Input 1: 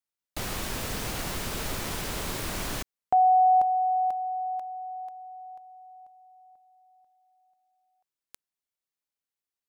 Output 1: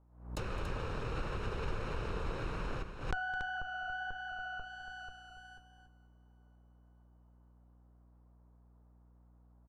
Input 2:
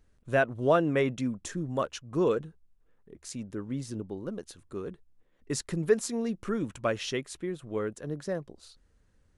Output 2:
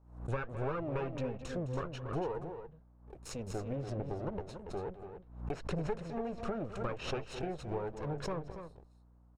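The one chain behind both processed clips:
lower of the sound and its delayed copy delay 0.75 ms
octave-band graphic EQ 250/500/8,000 Hz −7/+12/+3 dB
flanger 1.4 Hz, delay 0.2 ms, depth 7.1 ms, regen −71%
noise gate −52 dBFS, range −17 dB
downward compressor 6 to 1, threshold −35 dBFS
mains hum 60 Hz, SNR 27 dB
treble cut that deepens with the level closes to 2,300 Hz, closed at −36.5 dBFS
low-shelf EQ 200 Hz +5.5 dB
noise in a band 170–1,100 Hz −79 dBFS
multi-tap delay 212/283 ms −16/−9 dB
background raised ahead of every attack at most 100 dB per second

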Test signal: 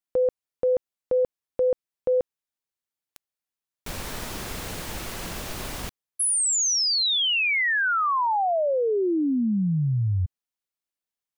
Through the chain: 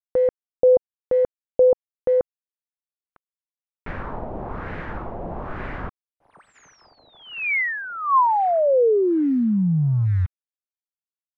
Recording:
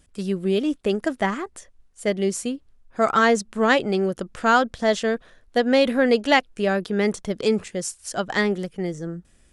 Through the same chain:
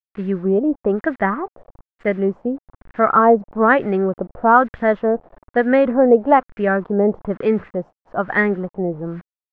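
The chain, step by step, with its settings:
head-to-tape spacing loss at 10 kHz 26 dB
bit-depth reduction 8 bits, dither none
auto-filter low-pass sine 1.1 Hz 690–1,900 Hz
level +4 dB

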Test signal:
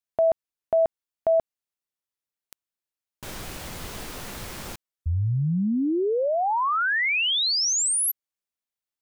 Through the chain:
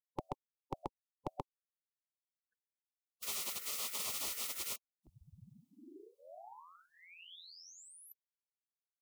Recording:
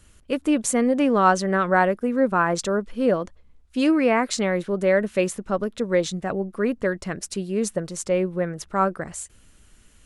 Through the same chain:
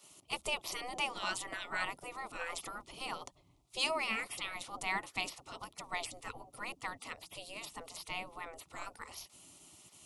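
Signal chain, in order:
phaser with its sweep stopped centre 320 Hz, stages 8
gate on every frequency bin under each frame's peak −20 dB weak
level +4 dB

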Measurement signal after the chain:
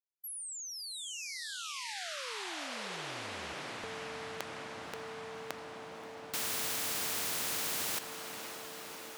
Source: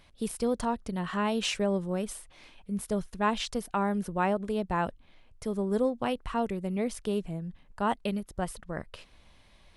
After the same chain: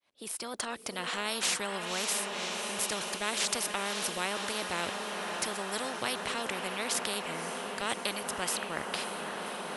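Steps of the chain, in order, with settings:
fade in at the beginning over 1.37 s
high-pass filter 320 Hz 12 dB per octave
dynamic equaliser 550 Hz, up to +6 dB, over −40 dBFS, Q 0.87
on a send: feedback delay with all-pass diffusion 563 ms, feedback 74%, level −15 dB
on the sum: every bin compressed towards the loudest bin 4 to 1
level −1 dB

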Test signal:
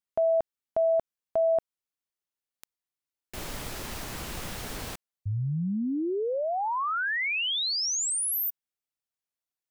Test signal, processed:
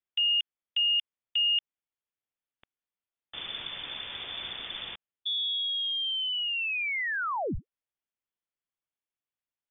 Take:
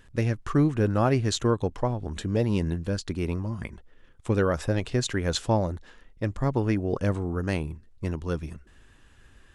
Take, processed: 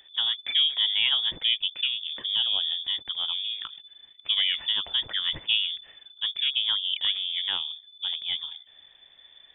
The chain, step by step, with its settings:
voice inversion scrambler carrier 3,500 Hz
level −2 dB

